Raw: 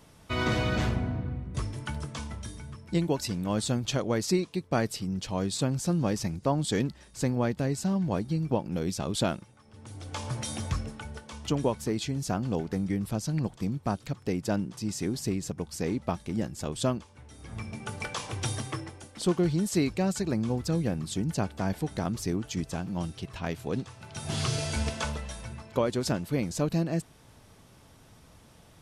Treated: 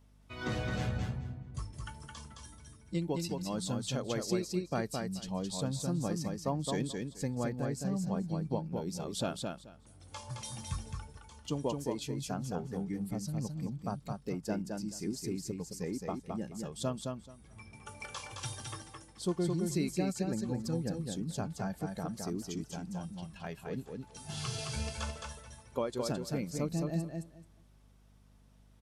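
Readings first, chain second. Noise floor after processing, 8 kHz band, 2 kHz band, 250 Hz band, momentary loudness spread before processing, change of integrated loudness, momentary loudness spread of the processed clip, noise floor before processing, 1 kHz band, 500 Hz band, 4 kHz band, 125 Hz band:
-61 dBFS, -5.5 dB, -8.0 dB, -6.0 dB, 10 LU, -6.5 dB, 12 LU, -56 dBFS, -6.5 dB, -6.0 dB, -6.5 dB, -6.5 dB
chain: spectral noise reduction 9 dB; feedback delay 216 ms, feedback 17%, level -4 dB; hum 50 Hz, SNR 25 dB; trim -7 dB

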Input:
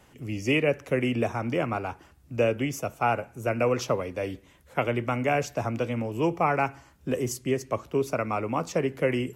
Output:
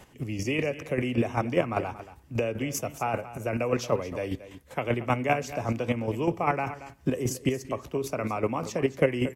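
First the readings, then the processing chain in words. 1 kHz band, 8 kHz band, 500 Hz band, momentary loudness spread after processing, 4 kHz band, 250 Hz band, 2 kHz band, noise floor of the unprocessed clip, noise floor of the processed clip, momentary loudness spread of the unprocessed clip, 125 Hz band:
-2.0 dB, +1.0 dB, -1.5 dB, 7 LU, -1.5 dB, -0.5 dB, -2.0 dB, -57 dBFS, -52 dBFS, 8 LU, 0.0 dB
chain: band-stop 1.4 kHz, Q 12; compression 3:1, threshold -25 dBFS, peak gain reduction 6 dB; square tremolo 5.1 Hz, depth 60%, duty 20%; delay 229 ms -14.5 dB; trim +7 dB

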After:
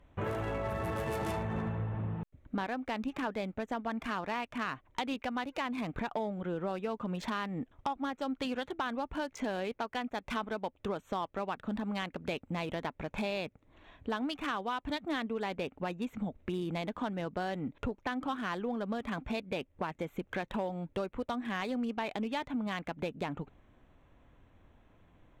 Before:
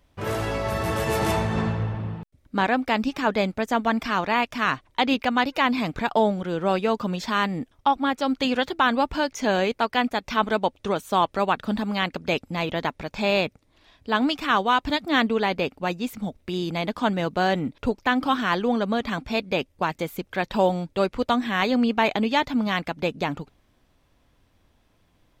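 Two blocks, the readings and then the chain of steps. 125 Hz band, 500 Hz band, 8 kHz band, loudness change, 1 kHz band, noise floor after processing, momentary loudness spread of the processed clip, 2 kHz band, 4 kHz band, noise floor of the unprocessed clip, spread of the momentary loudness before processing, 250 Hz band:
-9.0 dB, -12.0 dB, -13.0 dB, -12.0 dB, -13.5 dB, -68 dBFS, 3 LU, -13.5 dB, -14.5 dB, -65 dBFS, 7 LU, -11.0 dB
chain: local Wiener filter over 9 samples; compression 6:1, threshold -34 dBFS, peak gain reduction 18 dB; sine folder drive 5 dB, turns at -17.5 dBFS; trim -7 dB

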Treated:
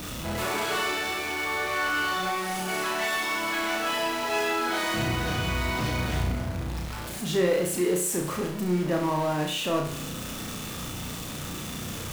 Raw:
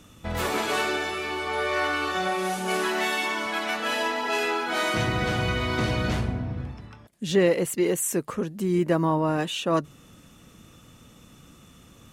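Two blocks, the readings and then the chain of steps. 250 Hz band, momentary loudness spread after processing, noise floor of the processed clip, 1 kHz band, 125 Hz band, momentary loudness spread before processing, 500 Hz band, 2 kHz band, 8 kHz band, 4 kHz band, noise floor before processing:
-2.0 dB, 9 LU, -36 dBFS, -1.0 dB, -1.0 dB, 7 LU, -2.5 dB, -0.5 dB, +1.5 dB, 0.0 dB, -52 dBFS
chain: jump at every zero crossing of -25 dBFS; on a send: flutter echo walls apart 5.7 m, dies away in 0.52 s; on the sum: trim -7 dB

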